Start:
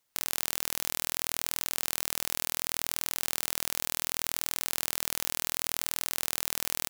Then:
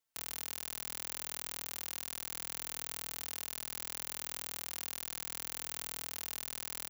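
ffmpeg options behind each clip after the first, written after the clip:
-filter_complex "[0:a]asplit=2[s0][s1];[s1]adelay=4,afreqshift=-0.35[s2];[s0][s2]amix=inputs=2:normalize=1,volume=0.473"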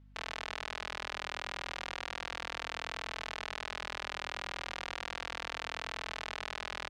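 -af "highpass=510,lowpass=3400,aemphasis=mode=reproduction:type=50fm,aeval=exprs='val(0)+0.000398*(sin(2*PI*50*n/s)+sin(2*PI*2*50*n/s)/2+sin(2*PI*3*50*n/s)/3+sin(2*PI*4*50*n/s)/4+sin(2*PI*5*50*n/s)/5)':c=same,volume=3.76"

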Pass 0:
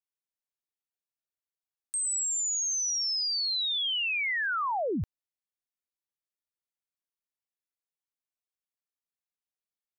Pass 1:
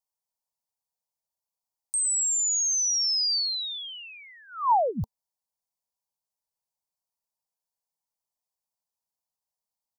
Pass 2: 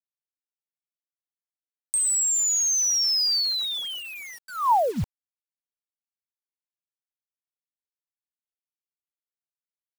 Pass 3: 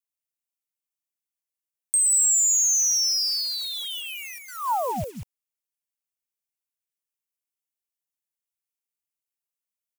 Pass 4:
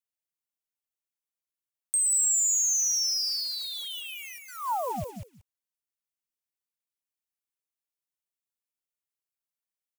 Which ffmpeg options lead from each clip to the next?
-af "firequalizer=gain_entry='entry(220,0);entry(320,-20);entry(450,0);entry(940,9);entry(1600,-26);entry(4600,2)':delay=0.05:min_phase=1,volume=1.33"
-filter_complex "[0:a]asplit=2[s0][s1];[s1]acompressor=threshold=0.0224:ratio=12,volume=0.944[s2];[s0][s2]amix=inputs=2:normalize=0,acrusher=bits=6:mix=0:aa=0.000001"
-af "aecho=1:1:191:0.531,aexciter=amount=1.2:drive=7.9:freq=2200,volume=0.562"
-af "aecho=1:1:181:0.178,volume=0.596"

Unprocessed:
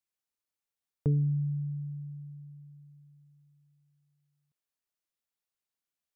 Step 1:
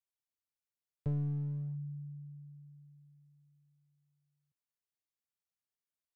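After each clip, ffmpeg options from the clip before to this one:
-af "aeval=exprs='clip(val(0),-1,0.0237)':c=same,equalizer=f=110:w=1.6:g=8,volume=0.376"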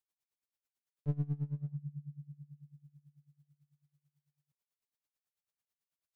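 -af "aeval=exprs='val(0)*pow(10,-22*(0.5-0.5*cos(2*PI*9.1*n/s))/20)':c=same,volume=1.68"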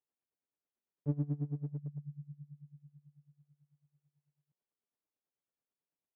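-af "aresample=8000,aeval=exprs='clip(val(0),-1,0.0141)':c=same,aresample=44100,bandpass=f=330:t=q:w=0.74:csg=0,volume=1.88"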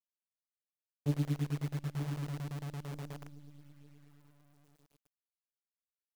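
-filter_complex "[0:a]asplit=2[s0][s1];[s1]adelay=918,lowpass=f=1100:p=1,volume=0.316,asplit=2[s2][s3];[s3]adelay=918,lowpass=f=1100:p=1,volume=0.26,asplit=2[s4][s5];[s5]adelay=918,lowpass=f=1100:p=1,volume=0.26[s6];[s0][s2][s4][s6]amix=inputs=4:normalize=0,asplit=2[s7][s8];[s8]acompressor=threshold=0.00631:ratio=12,volume=1.26[s9];[s7][s9]amix=inputs=2:normalize=0,acrusher=bits=8:dc=4:mix=0:aa=0.000001"

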